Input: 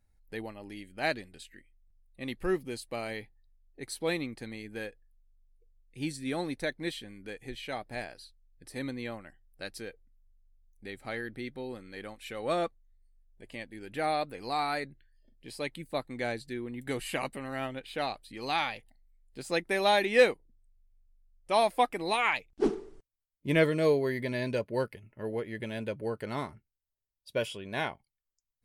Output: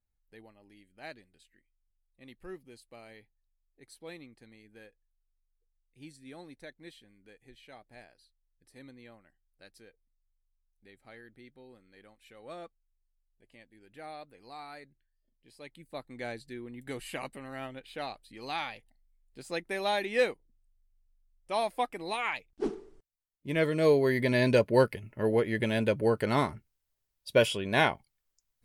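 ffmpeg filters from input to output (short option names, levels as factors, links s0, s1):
-af "volume=2.51,afade=t=in:st=15.56:d=0.7:silence=0.334965,afade=t=in:st=23.55:d=0.96:silence=0.223872"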